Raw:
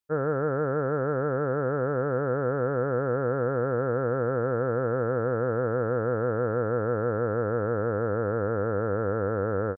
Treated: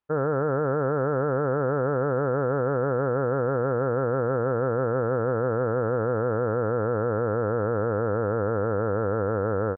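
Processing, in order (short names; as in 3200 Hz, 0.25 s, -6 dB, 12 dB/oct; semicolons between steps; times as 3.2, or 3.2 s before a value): bell 950 Hz +5 dB 0.91 oct; limiter -20 dBFS, peak gain reduction 6 dB; air absorption 430 m; gain +6.5 dB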